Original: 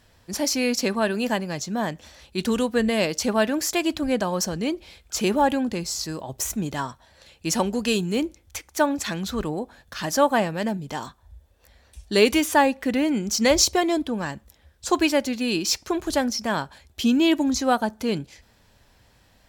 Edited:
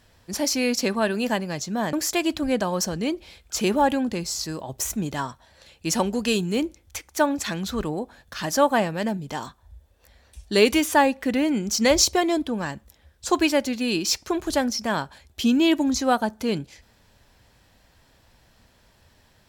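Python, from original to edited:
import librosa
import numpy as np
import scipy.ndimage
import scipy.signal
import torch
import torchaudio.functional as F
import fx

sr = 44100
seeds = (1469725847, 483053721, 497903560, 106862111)

y = fx.edit(x, sr, fx.cut(start_s=1.93, length_s=1.6), tone=tone)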